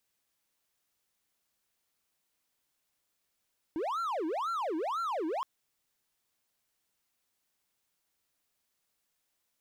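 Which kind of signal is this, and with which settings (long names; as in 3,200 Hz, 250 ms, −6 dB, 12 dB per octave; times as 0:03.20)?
siren wail 309–1,370 Hz 2 per second triangle −28.5 dBFS 1.67 s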